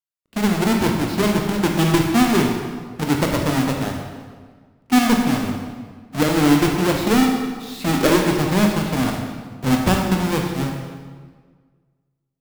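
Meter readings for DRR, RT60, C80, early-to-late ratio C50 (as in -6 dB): 1.0 dB, 1.6 s, 5.0 dB, 3.0 dB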